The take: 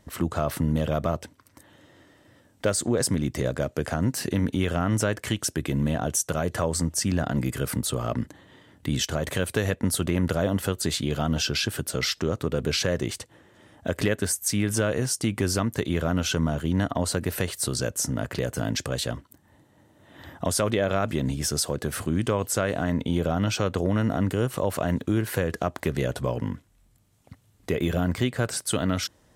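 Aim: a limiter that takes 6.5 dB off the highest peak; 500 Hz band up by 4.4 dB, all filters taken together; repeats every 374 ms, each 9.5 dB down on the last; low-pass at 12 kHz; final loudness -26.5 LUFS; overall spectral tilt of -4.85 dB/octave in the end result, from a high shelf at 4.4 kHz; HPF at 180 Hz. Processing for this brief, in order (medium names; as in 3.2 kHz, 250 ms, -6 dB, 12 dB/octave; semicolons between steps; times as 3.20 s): high-pass 180 Hz; low-pass 12 kHz; peaking EQ 500 Hz +5.5 dB; treble shelf 4.4 kHz -7 dB; peak limiter -14 dBFS; feedback delay 374 ms, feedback 33%, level -9.5 dB; trim +0.5 dB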